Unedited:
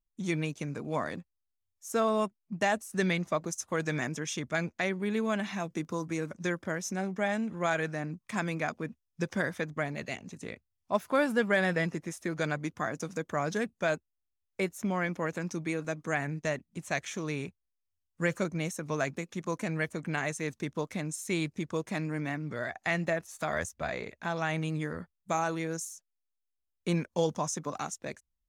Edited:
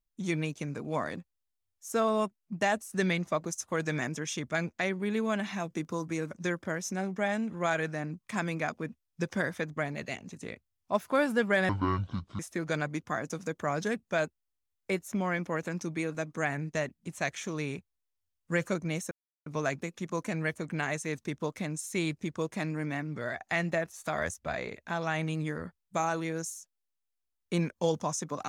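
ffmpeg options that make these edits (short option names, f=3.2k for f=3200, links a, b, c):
-filter_complex "[0:a]asplit=4[a][b][c][d];[a]atrim=end=11.694[e];[b]atrim=start=11.69:end=12.09,asetpts=PTS-STARTPTS,asetrate=25137,aresample=44100,atrim=end_sample=30947,asetpts=PTS-STARTPTS[f];[c]atrim=start=12.086:end=18.81,asetpts=PTS-STARTPTS,afade=t=out:st=6.72:d=0.004:c=hsin,apad=pad_dur=0.35[g];[d]atrim=start=18.81,asetpts=PTS-STARTPTS,afade=t=in:d=0.004:c=hsin[h];[e][f]acrossfade=d=0.004:c1=hsin:c2=hsin[i];[g][h]concat=n=2:v=0:a=1[j];[i][j]acrossfade=d=0.004:c1=hsin:c2=hsin"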